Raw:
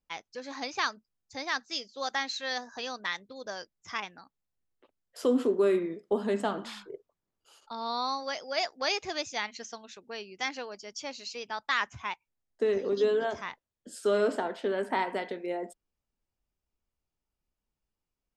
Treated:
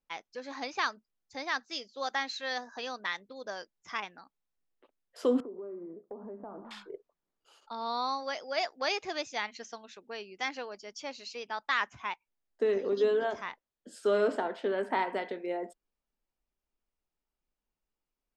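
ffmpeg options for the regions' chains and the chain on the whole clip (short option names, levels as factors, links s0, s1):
-filter_complex "[0:a]asettb=1/sr,asplit=3[s0][s1][s2];[s0]atrim=end=5.404[s3];[s1]atrim=start=5.4:end=6.71,asetpts=PTS-STARTPTS,afade=t=in:d=0.004:c=qsin,afade=t=out:st=1.306:d=0.004:c=qsin,lowpass=f=1100:w=0.5412,lowpass=f=1100:w=1.3066,acompressor=threshold=0.01:ratio=5:attack=3.2:release=140:knee=1:detection=peak[s4];[s2]atrim=start=6.706[s5];[s3][s4]acrossfade=d=0.004:c1=hsin:c2=qsin[s6];[s6][s5]acrossfade=d=0.004:c1=qsin:c2=hsin,lowpass=f=3700:p=1,equalizer=f=91:w=1:g=-12"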